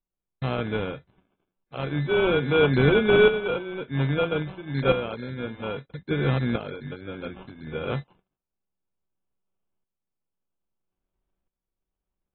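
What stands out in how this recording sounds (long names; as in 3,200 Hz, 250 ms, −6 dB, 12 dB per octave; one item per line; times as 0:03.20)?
a buzz of ramps at a fixed pitch in blocks of 8 samples
tremolo saw up 0.61 Hz, depth 70%
aliases and images of a low sample rate 1,900 Hz, jitter 0%
AAC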